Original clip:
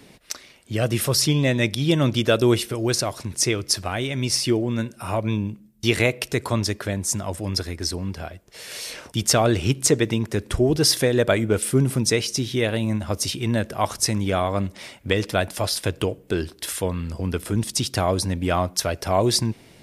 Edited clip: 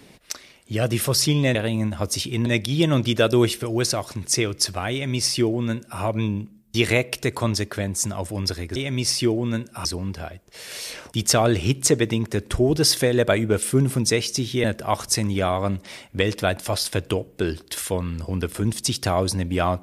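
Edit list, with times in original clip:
4.01–5.10 s: copy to 7.85 s
12.64–13.55 s: move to 1.55 s

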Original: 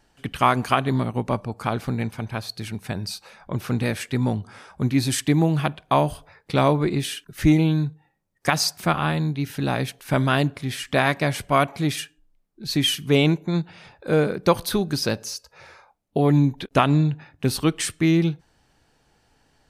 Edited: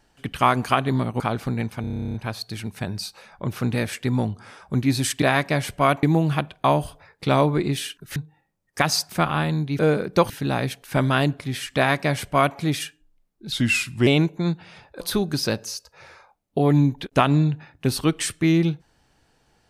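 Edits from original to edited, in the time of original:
1.20–1.61 s: delete
2.22 s: stutter 0.03 s, 12 plays
7.43–7.84 s: delete
10.93–11.74 s: copy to 5.30 s
12.69–13.15 s: speed 84%
14.09–14.60 s: move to 9.47 s

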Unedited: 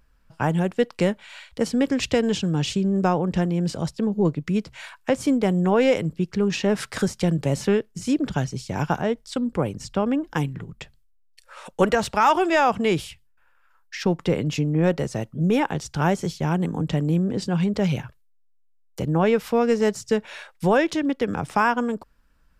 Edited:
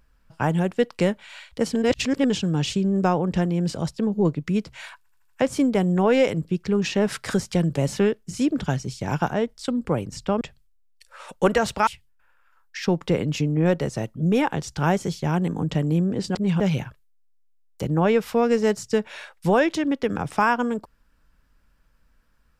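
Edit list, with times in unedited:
1.75–2.30 s: reverse
4.98 s: stutter 0.08 s, 5 plays
10.09–10.78 s: delete
12.24–13.05 s: delete
17.53–17.78 s: reverse

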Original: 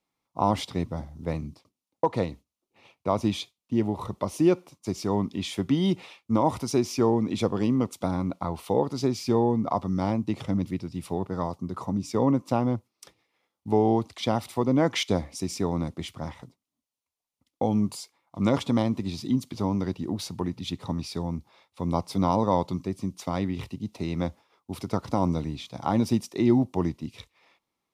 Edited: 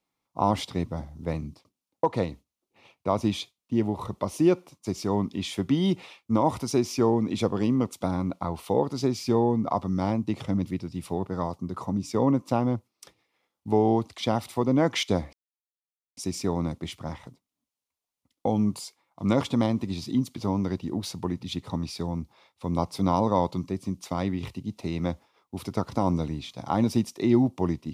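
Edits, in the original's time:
15.33 s: insert silence 0.84 s

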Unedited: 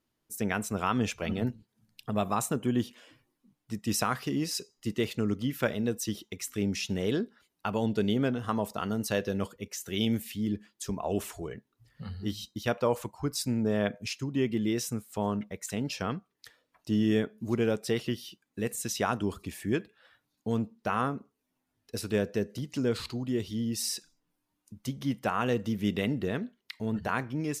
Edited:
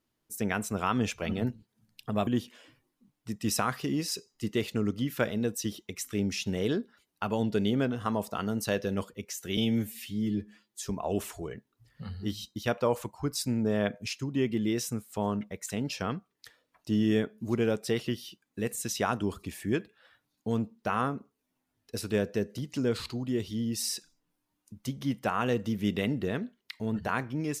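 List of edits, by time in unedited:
2.27–2.70 s: delete
10.00–10.86 s: stretch 1.5×

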